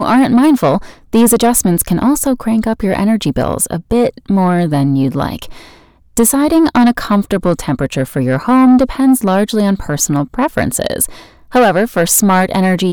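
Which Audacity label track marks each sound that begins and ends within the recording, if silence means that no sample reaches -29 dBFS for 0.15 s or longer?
1.130000	5.690000	sound
6.170000	11.240000	sound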